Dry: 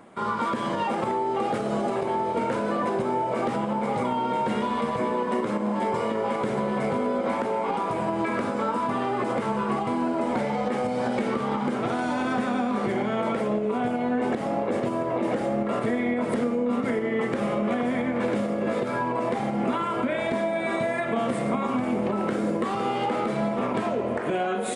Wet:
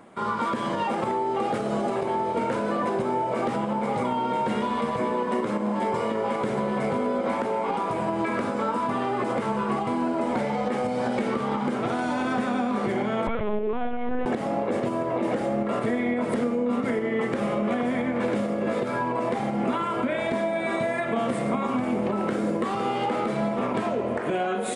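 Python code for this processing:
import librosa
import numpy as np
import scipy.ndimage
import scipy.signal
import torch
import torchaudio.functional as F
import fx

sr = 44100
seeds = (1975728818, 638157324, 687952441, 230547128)

y = fx.lpc_vocoder(x, sr, seeds[0], excitation='pitch_kept', order=10, at=(13.27, 14.26))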